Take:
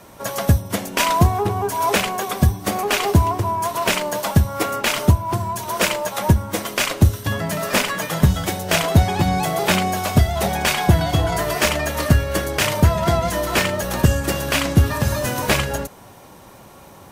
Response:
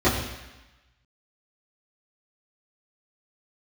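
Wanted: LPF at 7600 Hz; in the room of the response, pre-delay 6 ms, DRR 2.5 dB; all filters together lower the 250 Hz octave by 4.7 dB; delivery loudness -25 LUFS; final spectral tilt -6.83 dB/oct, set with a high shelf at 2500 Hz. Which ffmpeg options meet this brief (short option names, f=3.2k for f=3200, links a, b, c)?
-filter_complex "[0:a]lowpass=7.6k,equalizer=f=250:t=o:g=-7.5,highshelf=f=2.5k:g=-9,asplit=2[a][b];[1:a]atrim=start_sample=2205,adelay=6[c];[b][c]afir=irnorm=-1:irlink=0,volume=-21dB[d];[a][d]amix=inputs=2:normalize=0,volume=-11dB"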